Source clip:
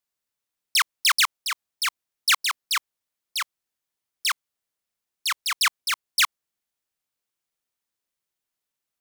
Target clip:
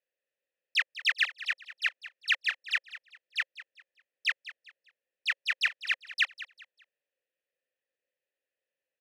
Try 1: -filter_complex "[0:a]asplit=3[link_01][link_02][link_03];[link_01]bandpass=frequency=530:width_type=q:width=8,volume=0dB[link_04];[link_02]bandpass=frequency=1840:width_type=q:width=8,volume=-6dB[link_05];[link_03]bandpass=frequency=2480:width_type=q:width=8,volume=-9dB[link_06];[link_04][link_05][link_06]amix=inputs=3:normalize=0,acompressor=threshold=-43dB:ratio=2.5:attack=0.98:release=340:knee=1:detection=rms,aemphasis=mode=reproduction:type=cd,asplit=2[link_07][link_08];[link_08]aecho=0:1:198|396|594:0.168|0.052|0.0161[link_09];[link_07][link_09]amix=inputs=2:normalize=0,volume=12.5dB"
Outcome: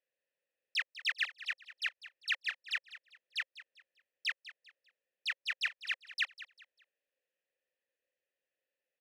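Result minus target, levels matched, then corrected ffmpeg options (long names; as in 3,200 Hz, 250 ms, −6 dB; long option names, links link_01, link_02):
downward compressor: peak gain reduction +7 dB
-filter_complex "[0:a]asplit=3[link_01][link_02][link_03];[link_01]bandpass=frequency=530:width_type=q:width=8,volume=0dB[link_04];[link_02]bandpass=frequency=1840:width_type=q:width=8,volume=-6dB[link_05];[link_03]bandpass=frequency=2480:width_type=q:width=8,volume=-9dB[link_06];[link_04][link_05][link_06]amix=inputs=3:normalize=0,acompressor=threshold=-31.5dB:ratio=2.5:attack=0.98:release=340:knee=1:detection=rms,aemphasis=mode=reproduction:type=cd,asplit=2[link_07][link_08];[link_08]aecho=0:1:198|396|594:0.168|0.052|0.0161[link_09];[link_07][link_09]amix=inputs=2:normalize=0,volume=12.5dB"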